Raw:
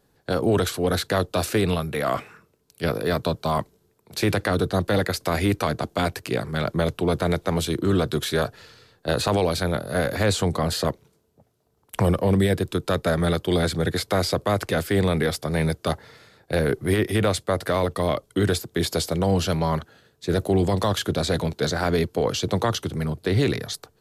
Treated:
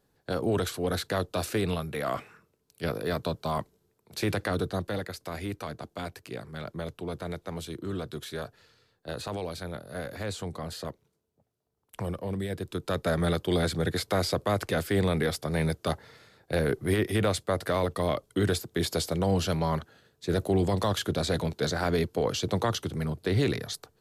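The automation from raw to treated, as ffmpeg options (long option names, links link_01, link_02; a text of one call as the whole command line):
ffmpeg -i in.wav -af "volume=2dB,afade=type=out:start_time=4.59:duration=0.48:silence=0.473151,afade=type=in:start_time=12.47:duration=0.68:silence=0.375837" out.wav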